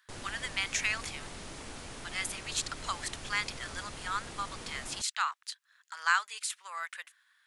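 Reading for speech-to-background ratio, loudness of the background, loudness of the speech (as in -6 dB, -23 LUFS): 10.0 dB, -44.5 LUFS, -34.5 LUFS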